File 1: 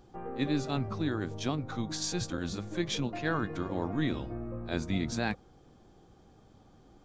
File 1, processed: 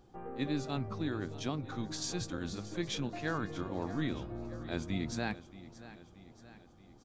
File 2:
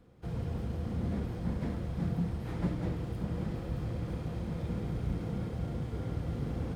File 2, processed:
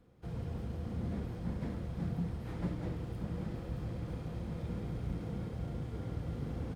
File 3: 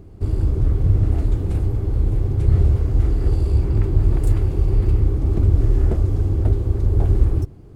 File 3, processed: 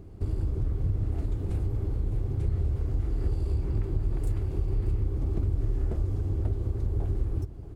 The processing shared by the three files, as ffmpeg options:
-filter_complex "[0:a]acompressor=threshold=-22dB:ratio=3,asplit=2[a][b];[b]aecho=0:1:628|1256|1884|2512|3140:0.15|0.0853|0.0486|0.0277|0.0158[c];[a][c]amix=inputs=2:normalize=0,volume=-4dB"

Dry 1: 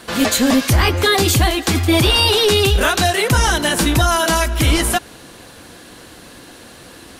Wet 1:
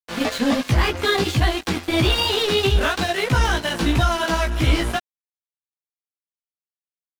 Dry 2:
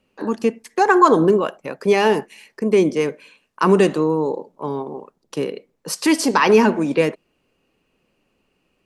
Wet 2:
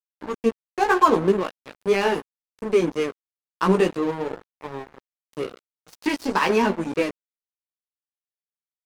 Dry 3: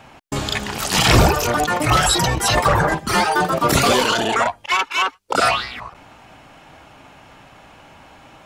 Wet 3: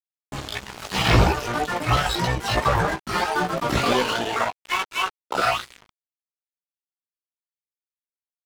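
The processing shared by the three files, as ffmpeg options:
-filter_complex "[0:a]acrossover=split=5000[a][b];[b]acompressor=threshold=-38dB:ratio=4:attack=1:release=60[c];[a][c]amix=inputs=2:normalize=0,flanger=delay=15.5:depth=2.2:speed=3,aeval=exprs='sgn(val(0))*max(abs(val(0))-0.0335,0)':c=same"

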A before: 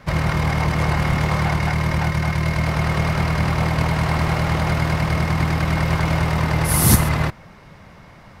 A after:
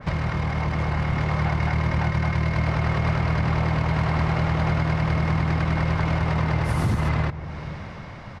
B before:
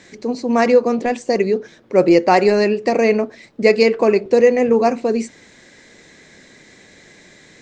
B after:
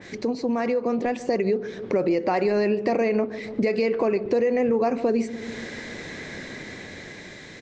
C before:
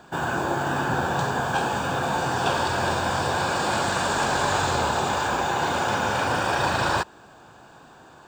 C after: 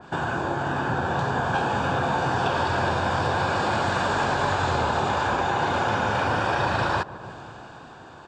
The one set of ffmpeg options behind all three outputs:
-filter_complex "[0:a]acrossover=split=3200[a][b];[b]asoftclip=type=tanh:threshold=-24dB[c];[a][c]amix=inputs=2:normalize=0,alimiter=limit=-12dB:level=0:latency=1:release=92,lowpass=5.5k,dynaudnorm=f=270:g=9:m=7dB,equalizer=f=99:t=o:w=0.6:g=4.5,asplit=2[d][e];[e]adelay=145,lowpass=f=860:p=1,volume=-16.5dB,asplit=2[f][g];[g]adelay=145,lowpass=f=860:p=1,volume=0.52,asplit=2[h][i];[i]adelay=145,lowpass=f=860:p=1,volume=0.52,asplit=2[j][k];[k]adelay=145,lowpass=f=860:p=1,volume=0.52,asplit=2[l][m];[m]adelay=145,lowpass=f=860:p=1,volume=0.52[n];[d][f][h][j][l][n]amix=inputs=6:normalize=0,acompressor=threshold=-30dB:ratio=2.5,adynamicequalizer=threshold=0.00562:dfrequency=2600:dqfactor=0.7:tfrequency=2600:tqfactor=0.7:attack=5:release=100:ratio=0.375:range=1.5:mode=cutabove:tftype=highshelf,volume=4dB"

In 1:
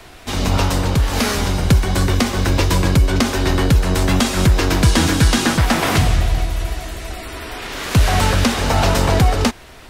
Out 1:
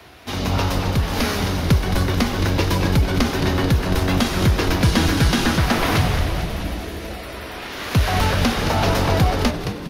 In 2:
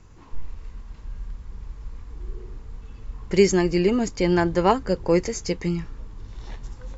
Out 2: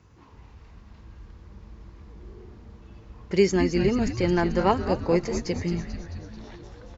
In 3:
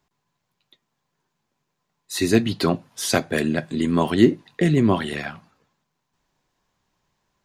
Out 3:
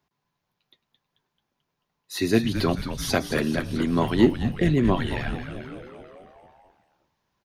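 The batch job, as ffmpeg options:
-filter_complex "[0:a]highpass=f=55:w=0.5412,highpass=f=55:w=1.3066,equalizer=f=7.9k:t=o:w=0.38:g=-11.5,asplit=9[a][b][c][d][e][f][g][h][i];[b]adelay=219,afreqshift=-130,volume=-8.5dB[j];[c]adelay=438,afreqshift=-260,volume=-12.7dB[k];[d]adelay=657,afreqshift=-390,volume=-16.8dB[l];[e]adelay=876,afreqshift=-520,volume=-21dB[m];[f]adelay=1095,afreqshift=-650,volume=-25.1dB[n];[g]adelay=1314,afreqshift=-780,volume=-29.3dB[o];[h]adelay=1533,afreqshift=-910,volume=-33.4dB[p];[i]adelay=1752,afreqshift=-1040,volume=-37.6dB[q];[a][j][k][l][m][n][o][p][q]amix=inputs=9:normalize=0,volume=-3dB"

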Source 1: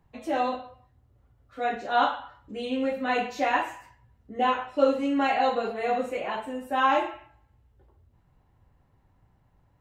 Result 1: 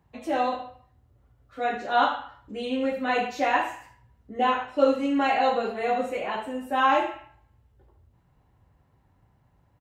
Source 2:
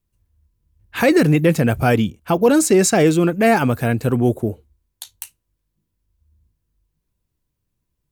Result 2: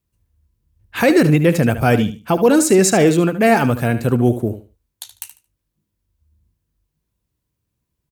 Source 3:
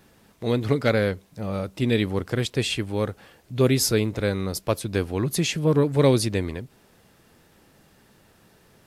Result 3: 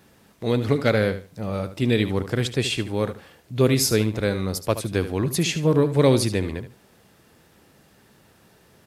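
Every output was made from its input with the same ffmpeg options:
-filter_complex "[0:a]highpass=44,asplit=2[a][b];[b]aecho=0:1:74|148|222:0.251|0.0527|0.0111[c];[a][c]amix=inputs=2:normalize=0,volume=1dB"

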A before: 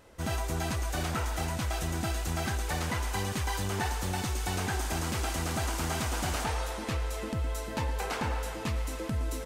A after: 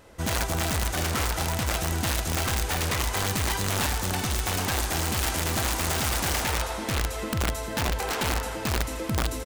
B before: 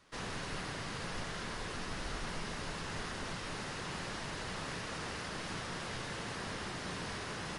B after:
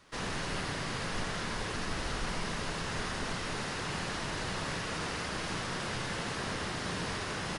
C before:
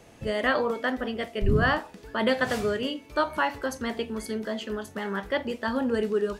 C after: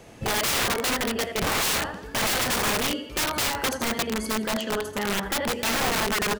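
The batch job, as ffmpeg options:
-af "aecho=1:1:83|166|249|332|415:0.335|0.144|0.0619|0.0266|0.0115,aeval=exprs='(mod(15.8*val(0)+1,2)-1)/15.8':c=same,volume=4.5dB"

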